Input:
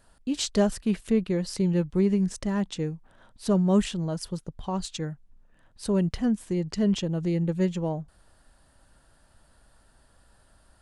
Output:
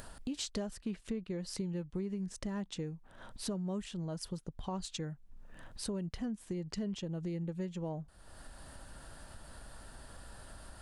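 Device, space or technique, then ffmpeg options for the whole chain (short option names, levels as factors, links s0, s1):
upward and downward compression: -filter_complex "[0:a]acompressor=mode=upward:threshold=0.0282:ratio=2.5,acompressor=threshold=0.0316:ratio=6,asettb=1/sr,asplit=3[s0][s1][s2];[s0]atrim=end=0.774[s3];[s1]atrim=start=0.77:end=1.41,asetpts=PTS-STARTPTS,afade=t=in:d=0.004:c=qsin,afade=t=out:st=0.636:d=0.004:c=qsin,lowpass=8500[s4];[s2]atrim=start=1.406[s5];[s3][s4]acrossfade=d=0.004:c1=hsin:c2=qsin[s6];[s6][s5]acrossfade=d=0.004:c1=qsin:c2=hsin,volume=0.562"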